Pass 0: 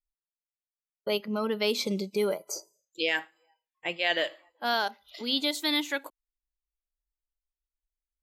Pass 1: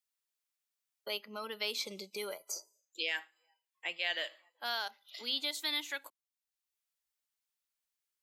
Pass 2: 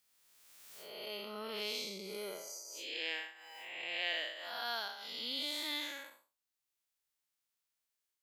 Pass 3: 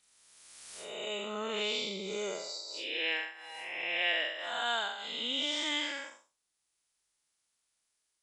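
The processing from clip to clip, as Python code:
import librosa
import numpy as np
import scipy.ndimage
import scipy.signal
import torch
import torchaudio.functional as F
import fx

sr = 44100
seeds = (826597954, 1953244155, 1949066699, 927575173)

y1 = fx.highpass(x, sr, hz=1400.0, slope=6)
y1 = fx.band_squash(y1, sr, depth_pct=40)
y1 = y1 * librosa.db_to_amplitude(-4.5)
y2 = fx.spec_blur(y1, sr, span_ms=218.0)
y2 = fx.pre_swell(y2, sr, db_per_s=31.0)
y2 = y2 * librosa.db_to_amplitude(2.5)
y3 = fx.freq_compress(y2, sr, knee_hz=2600.0, ratio=1.5)
y3 = y3 * librosa.db_to_amplitude(7.0)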